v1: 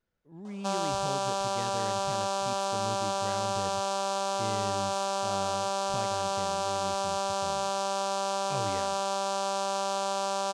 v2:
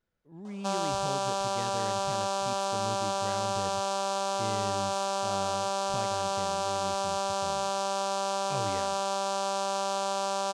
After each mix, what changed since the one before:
none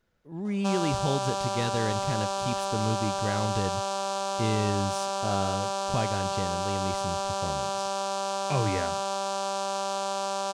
speech +10.0 dB

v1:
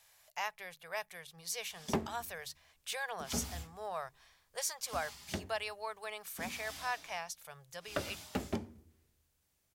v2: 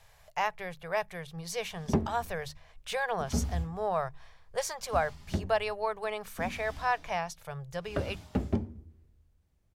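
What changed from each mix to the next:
speech +8.5 dB; master: add tilt -3.5 dB/oct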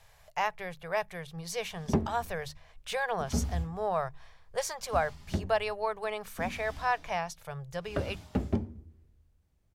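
none

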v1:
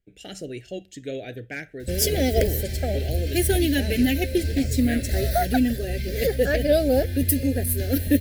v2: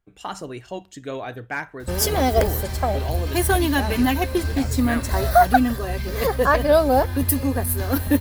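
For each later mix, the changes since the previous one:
master: remove Chebyshev band-stop 540–2000 Hz, order 2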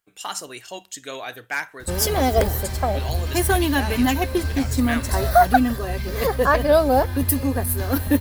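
speech: add tilt +4 dB/oct

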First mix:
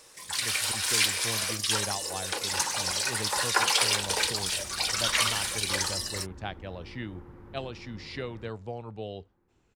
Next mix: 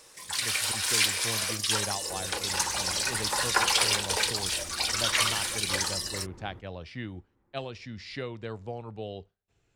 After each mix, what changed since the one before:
second sound: entry -1.90 s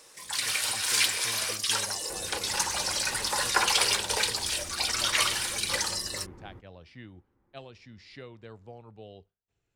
speech -9.0 dB

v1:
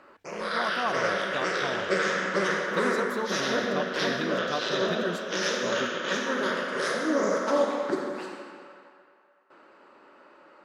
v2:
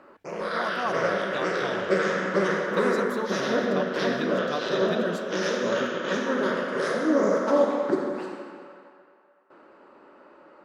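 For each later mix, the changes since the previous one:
background: add tilt shelf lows +5 dB, about 1300 Hz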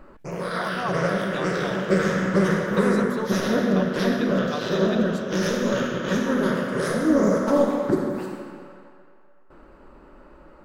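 background: remove BPF 330–5700 Hz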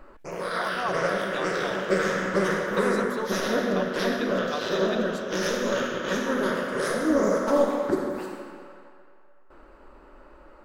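master: add bell 140 Hz -11.5 dB 1.6 oct

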